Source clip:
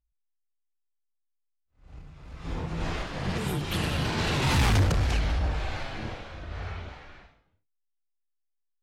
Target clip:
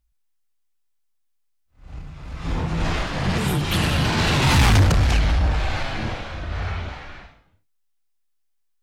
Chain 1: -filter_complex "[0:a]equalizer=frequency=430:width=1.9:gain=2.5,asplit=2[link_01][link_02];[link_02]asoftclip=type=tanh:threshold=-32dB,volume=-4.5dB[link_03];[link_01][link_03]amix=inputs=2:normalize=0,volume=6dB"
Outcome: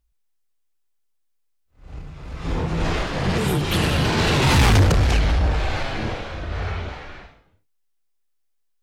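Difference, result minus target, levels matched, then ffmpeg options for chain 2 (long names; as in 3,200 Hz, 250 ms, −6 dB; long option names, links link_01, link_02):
500 Hz band +3.5 dB
-filter_complex "[0:a]equalizer=frequency=430:width=1.9:gain=-3.5,asplit=2[link_01][link_02];[link_02]asoftclip=type=tanh:threshold=-32dB,volume=-4.5dB[link_03];[link_01][link_03]amix=inputs=2:normalize=0,volume=6dB"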